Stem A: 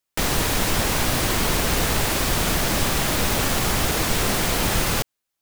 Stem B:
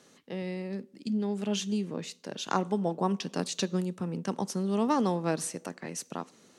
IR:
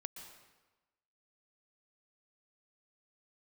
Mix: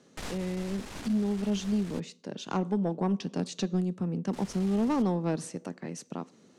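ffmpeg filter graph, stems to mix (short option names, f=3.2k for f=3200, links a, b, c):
-filter_complex "[0:a]aeval=exprs='(tanh(10*val(0)+0.65)-tanh(0.65))/10':c=same,volume=-12dB,asplit=3[a][b][c];[a]atrim=end=2,asetpts=PTS-STARTPTS,afade=t=out:st=1.996:d=0.004:c=hsin[d];[b]atrim=start=2:end=4.33,asetpts=PTS-STARTPTS,volume=0[e];[c]atrim=start=4.33,asetpts=PTS-STARTPTS,afade=t=in:d=0.004:c=hsin[f];[d][e][f]concat=n=3:v=0:a=1[g];[1:a]equalizer=f=180:w=0.36:g=8.5,asoftclip=type=tanh:threshold=-14dB,volume=-5dB,asplit=2[h][i];[i]apad=whole_len=238586[j];[g][j]sidechaincompress=threshold=-39dB:ratio=3:attack=42:release=552[k];[k][h]amix=inputs=2:normalize=0,lowpass=8.4k"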